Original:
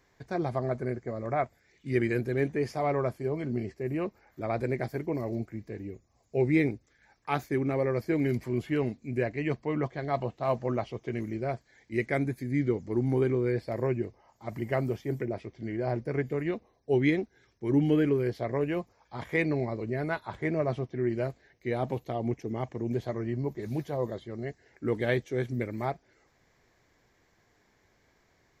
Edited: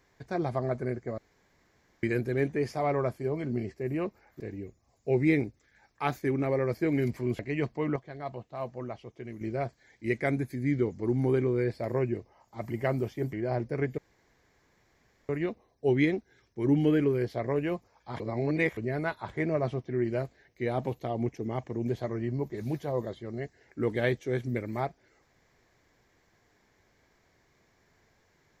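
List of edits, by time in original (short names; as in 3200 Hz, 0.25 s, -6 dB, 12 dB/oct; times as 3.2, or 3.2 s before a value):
1.18–2.03 room tone
4.4–5.67 cut
8.66–9.27 cut
9.84–11.29 gain -8 dB
15.21–15.69 cut
16.34 insert room tone 1.31 s
19.25–19.82 reverse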